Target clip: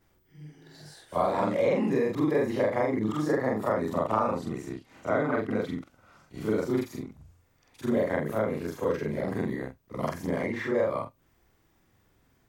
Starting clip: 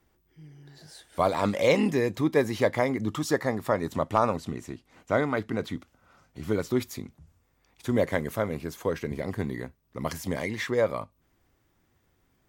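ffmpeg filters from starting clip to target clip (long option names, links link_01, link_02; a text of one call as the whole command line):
ffmpeg -i in.wav -filter_complex "[0:a]afftfilt=real='re':imag='-im':win_size=4096:overlap=0.75,acrossover=split=140|1900[link_01][link_02][link_03];[link_01]acompressor=threshold=-54dB:ratio=4[link_04];[link_02]acompressor=threshold=-29dB:ratio=4[link_05];[link_03]acompressor=threshold=-58dB:ratio=4[link_06];[link_04][link_05][link_06]amix=inputs=3:normalize=0,volume=7dB" out.wav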